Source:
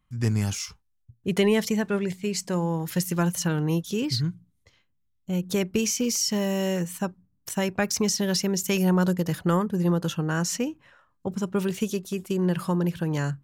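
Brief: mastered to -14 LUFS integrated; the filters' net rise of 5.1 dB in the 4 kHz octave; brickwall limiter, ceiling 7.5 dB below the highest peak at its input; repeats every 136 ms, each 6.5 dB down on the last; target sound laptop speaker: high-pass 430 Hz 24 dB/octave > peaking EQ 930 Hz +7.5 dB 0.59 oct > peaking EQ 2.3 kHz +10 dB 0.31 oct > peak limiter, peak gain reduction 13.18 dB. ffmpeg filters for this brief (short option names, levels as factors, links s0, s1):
-af "equalizer=f=4000:t=o:g=6.5,alimiter=limit=0.133:level=0:latency=1,highpass=f=430:w=0.5412,highpass=f=430:w=1.3066,equalizer=f=930:t=o:w=0.59:g=7.5,equalizer=f=2300:t=o:w=0.31:g=10,aecho=1:1:136|272|408|544|680|816:0.473|0.222|0.105|0.0491|0.0231|0.0109,volume=10.6,alimiter=limit=0.596:level=0:latency=1"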